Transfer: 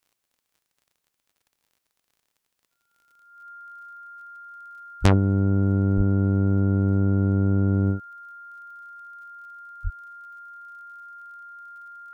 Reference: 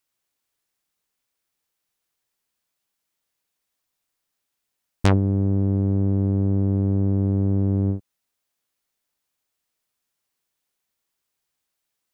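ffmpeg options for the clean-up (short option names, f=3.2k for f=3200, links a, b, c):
-filter_complex "[0:a]adeclick=t=4,bandreject=f=1.4k:w=30,asplit=3[a][b][c];[a]afade=t=out:st=5.01:d=0.02[d];[b]highpass=f=140:w=0.5412,highpass=f=140:w=1.3066,afade=t=in:st=5.01:d=0.02,afade=t=out:st=5.13:d=0.02[e];[c]afade=t=in:st=5.13:d=0.02[f];[d][e][f]amix=inputs=3:normalize=0,asplit=3[g][h][i];[g]afade=t=out:st=5.96:d=0.02[j];[h]highpass=f=140:w=0.5412,highpass=f=140:w=1.3066,afade=t=in:st=5.96:d=0.02,afade=t=out:st=6.08:d=0.02[k];[i]afade=t=in:st=6.08:d=0.02[l];[j][k][l]amix=inputs=3:normalize=0,asplit=3[m][n][o];[m]afade=t=out:st=9.83:d=0.02[p];[n]highpass=f=140:w=0.5412,highpass=f=140:w=1.3066,afade=t=in:st=9.83:d=0.02,afade=t=out:st=9.95:d=0.02[q];[o]afade=t=in:st=9.95:d=0.02[r];[p][q][r]amix=inputs=3:normalize=0"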